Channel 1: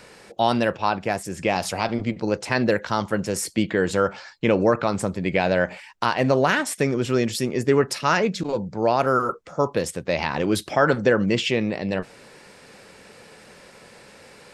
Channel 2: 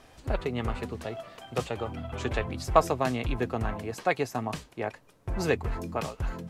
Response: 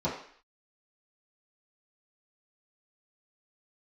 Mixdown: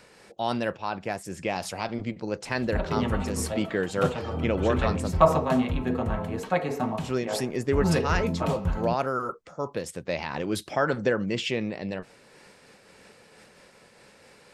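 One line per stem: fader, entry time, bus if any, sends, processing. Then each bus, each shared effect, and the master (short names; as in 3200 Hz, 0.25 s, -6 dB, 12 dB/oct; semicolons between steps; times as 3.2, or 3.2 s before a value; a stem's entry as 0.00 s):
-4.0 dB, 0.00 s, muted 5.17–7.03, no send, dry
+2.0 dB, 2.45 s, send -10.5 dB, dry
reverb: on, RT60 0.55 s, pre-delay 3 ms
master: noise-modulated level, depth 55%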